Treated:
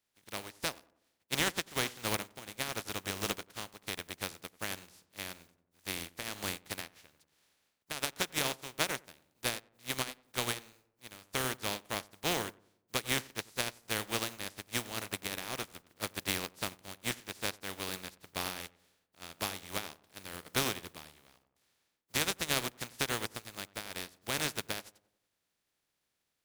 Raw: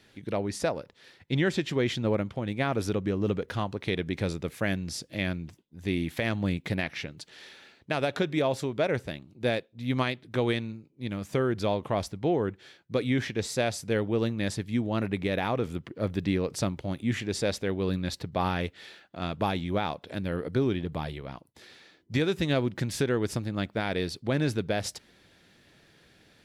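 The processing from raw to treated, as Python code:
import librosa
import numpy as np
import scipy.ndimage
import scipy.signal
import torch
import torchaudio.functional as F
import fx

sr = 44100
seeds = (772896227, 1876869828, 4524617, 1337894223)

y = fx.spec_flatten(x, sr, power=0.27)
y = fx.echo_filtered(y, sr, ms=92, feedback_pct=52, hz=1400.0, wet_db=-9.0)
y = fx.upward_expand(y, sr, threshold_db=-36.0, expansion=2.5)
y = F.gain(torch.from_numpy(y), -3.5).numpy()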